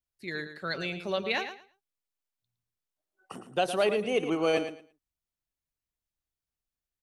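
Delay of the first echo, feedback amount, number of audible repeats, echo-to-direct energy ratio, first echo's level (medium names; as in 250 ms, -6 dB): 112 ms, 19%, 2, -10.0 dB, -10.0 dB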